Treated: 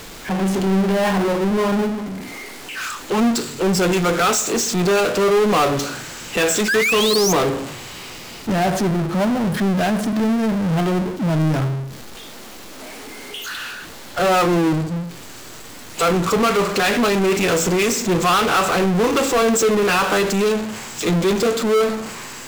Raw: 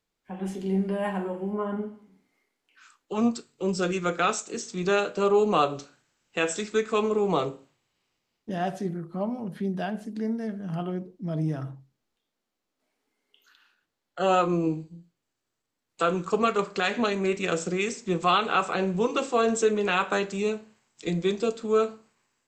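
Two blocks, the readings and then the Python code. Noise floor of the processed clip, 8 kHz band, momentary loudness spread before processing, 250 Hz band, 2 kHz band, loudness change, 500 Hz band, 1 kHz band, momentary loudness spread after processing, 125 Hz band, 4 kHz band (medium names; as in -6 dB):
-37 dBFS, +15.0 dB, 11 LU, +10.0 dB, +10.5 dB, +8.5 dB, +8.0 dB, +7.5 dB, 17 LU, +11.0 dB, +12.0 dB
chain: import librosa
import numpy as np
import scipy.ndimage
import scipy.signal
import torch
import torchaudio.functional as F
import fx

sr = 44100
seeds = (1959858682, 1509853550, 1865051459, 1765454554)

y = fx.spec_paint(x, sr, seeds[0], shape='rise', start_s=6.68, length_s=0.65, low_hz=1500.0, high_hz=6600.0, level_db=-30.0)
y = fx.power_curve(y, sr, exponent=0.35)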